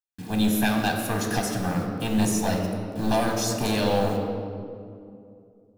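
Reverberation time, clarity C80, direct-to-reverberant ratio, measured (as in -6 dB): 2.5 s, 5.0 dB, 2.0 dB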